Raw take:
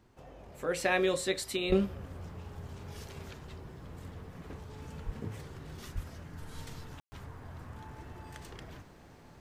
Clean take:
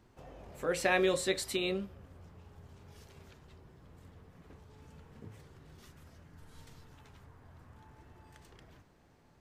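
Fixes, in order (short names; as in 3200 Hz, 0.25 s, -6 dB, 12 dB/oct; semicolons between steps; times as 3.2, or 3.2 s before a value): de-plosive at 1.68/5.05/5.94; room tone fill 7–7.12; gain correction -10 dB, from 1.72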